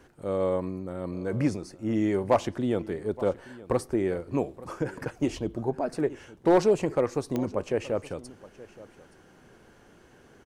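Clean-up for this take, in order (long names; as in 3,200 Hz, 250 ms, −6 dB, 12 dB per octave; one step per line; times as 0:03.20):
clipped peaks rebuilt −13 dBFS
click removal
echo removal 873 ms −19 dB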